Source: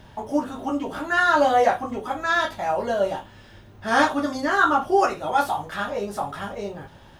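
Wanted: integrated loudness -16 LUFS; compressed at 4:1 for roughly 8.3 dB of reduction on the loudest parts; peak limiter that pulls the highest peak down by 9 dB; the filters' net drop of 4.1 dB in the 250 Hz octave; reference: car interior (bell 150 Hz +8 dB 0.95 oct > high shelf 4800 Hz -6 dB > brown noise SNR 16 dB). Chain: bell 250 Hz -7.5 dB; compressor 4:1, threshold -25 dBFS; limiter -23 dBFS; bell 150 Hz +8 dB 0.95 oct; high shelf 4800 Hz -6 dB; brown noise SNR 16 dB; gain +16.5 dB

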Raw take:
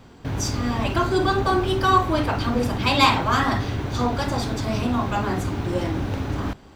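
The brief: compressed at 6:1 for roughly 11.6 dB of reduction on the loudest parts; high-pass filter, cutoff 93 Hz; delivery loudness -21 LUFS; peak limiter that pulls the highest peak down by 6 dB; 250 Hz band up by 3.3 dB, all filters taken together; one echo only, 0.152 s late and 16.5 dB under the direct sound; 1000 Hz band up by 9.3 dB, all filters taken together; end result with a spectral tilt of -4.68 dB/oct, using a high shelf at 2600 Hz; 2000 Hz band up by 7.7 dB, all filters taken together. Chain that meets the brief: HPF 93 Hz; bell 250 Hz +3.5 dB; bell 1000 Hz +9 dB; bell 2000 Hz +5 dB; high shelf 2600 Hz +4.5 dB; compressor 6:1, threshold -16 dBFS; limiter -12 dBFS; echo 0.152 s -16.5 dB; gain +1.5 dB

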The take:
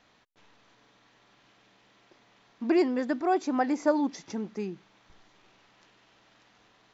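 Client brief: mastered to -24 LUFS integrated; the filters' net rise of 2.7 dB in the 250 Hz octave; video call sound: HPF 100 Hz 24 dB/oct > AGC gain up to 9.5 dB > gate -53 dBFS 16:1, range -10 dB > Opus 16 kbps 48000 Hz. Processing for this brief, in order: HPF 100 Hz 24 dB/oct; bell 250 Hz +3.5 dB; AGC gain up to 9.5 dB; gate -53 dBFS 16:1, range -10 dB; gain +2.5 dB; Opus 16 kbps 48000 Hz

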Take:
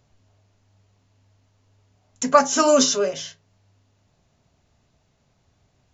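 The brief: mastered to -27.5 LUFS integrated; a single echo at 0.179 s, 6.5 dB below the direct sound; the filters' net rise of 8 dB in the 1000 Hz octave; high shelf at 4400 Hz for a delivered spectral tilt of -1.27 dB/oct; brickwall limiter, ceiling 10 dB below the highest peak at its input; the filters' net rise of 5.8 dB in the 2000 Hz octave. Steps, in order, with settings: bell 1000 Hz +8.5 dB; bell 2000 Hz +3.5 dB; high shelf 4400 Hz +3 dB; limiter -5 dBFS; echo 0.179 s -6.5 dB; gain -11.5 dB

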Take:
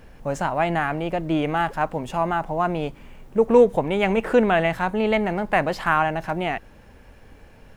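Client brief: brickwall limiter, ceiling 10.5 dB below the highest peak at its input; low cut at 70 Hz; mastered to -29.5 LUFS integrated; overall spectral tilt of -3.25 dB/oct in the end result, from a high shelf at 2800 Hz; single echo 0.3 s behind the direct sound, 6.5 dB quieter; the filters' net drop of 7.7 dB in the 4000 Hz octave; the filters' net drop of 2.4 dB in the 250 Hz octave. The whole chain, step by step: HPF 70 Hz; bell 250 Hz -3 dB; high shelf 2800 Hz -9 dB; bell 4000 Hz -4.5 dB; limiter -16.5 dBFS; echo 0.3 s -6.5 dB; gain -3 dB

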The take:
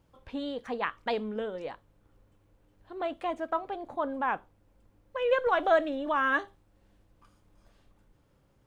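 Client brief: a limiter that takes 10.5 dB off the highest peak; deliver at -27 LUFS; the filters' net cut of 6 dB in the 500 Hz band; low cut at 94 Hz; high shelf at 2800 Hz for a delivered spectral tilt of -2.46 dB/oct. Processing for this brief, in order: HPF 94 Hz; bell 500 Hz -7.5 dB; high shelf 2800 Hz -5 dB; gain +11 dB; limiter -16 dBFS

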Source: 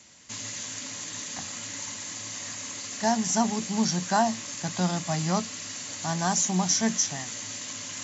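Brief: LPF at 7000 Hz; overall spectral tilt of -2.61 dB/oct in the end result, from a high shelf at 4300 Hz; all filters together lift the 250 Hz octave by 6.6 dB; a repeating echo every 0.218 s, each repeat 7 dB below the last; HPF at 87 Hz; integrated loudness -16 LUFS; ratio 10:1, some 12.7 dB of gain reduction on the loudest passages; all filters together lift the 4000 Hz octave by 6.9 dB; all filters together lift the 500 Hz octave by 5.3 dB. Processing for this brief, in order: HPF 87 Hz; LPF 7000 Hz; bell 250 Hz +7.5 dB; bell 500 Hz +6 dB; bell 4000 Hz +8 dB; high shelf 4300 Hz +3 dB; compressor 10:1, threshold -26 dBFS; feedback echo 0.218 s, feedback 45%, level -7 dB; gain +13 dB

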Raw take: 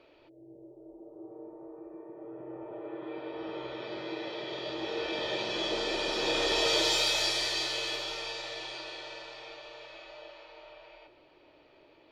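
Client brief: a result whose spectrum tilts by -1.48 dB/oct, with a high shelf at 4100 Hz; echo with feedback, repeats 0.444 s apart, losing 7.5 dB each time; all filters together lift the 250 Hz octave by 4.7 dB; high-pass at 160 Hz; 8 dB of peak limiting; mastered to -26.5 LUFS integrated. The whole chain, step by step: HPF 160 Hz; bell 250 Hz +8 dB; high shelf 4100 Hz +4.5 dB; limiter -20 dBFS; feedback echo 0.444 s, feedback 42%, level -7.5 dB; gain +4.5 dB

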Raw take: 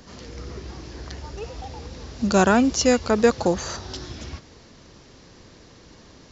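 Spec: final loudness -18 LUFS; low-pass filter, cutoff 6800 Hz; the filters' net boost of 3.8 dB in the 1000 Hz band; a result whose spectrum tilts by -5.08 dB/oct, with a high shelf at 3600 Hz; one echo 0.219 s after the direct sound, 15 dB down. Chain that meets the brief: LPF 6800 Hz; bell 1000 Hz +6 dB; high shelf 3600 Hz -8 dB; echo 0.219 s -15 dB; gain +1.5 dB

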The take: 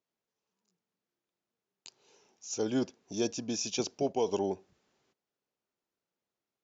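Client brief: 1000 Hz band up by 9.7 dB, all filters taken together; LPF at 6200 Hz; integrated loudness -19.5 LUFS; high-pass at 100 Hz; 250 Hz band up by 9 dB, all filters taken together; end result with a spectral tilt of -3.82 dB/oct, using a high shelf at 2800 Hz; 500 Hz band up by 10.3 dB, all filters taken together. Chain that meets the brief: HPF 100 Hz; LPF 6200 Hz; bell 250 Hz +7.5 dB; bell 500 Hz +8.5 dB; bell 1000 Hz +8 dB; high shelf 2800 Hz +7.5 dB; gain +5 dB

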